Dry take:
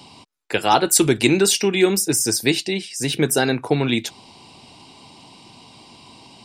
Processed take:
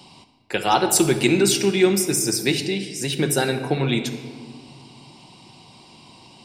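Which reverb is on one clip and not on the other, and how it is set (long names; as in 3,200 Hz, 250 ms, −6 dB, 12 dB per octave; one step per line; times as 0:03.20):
rectangular room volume 2,200 cubic metres, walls mixed, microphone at 0.99 metres
level −3 dB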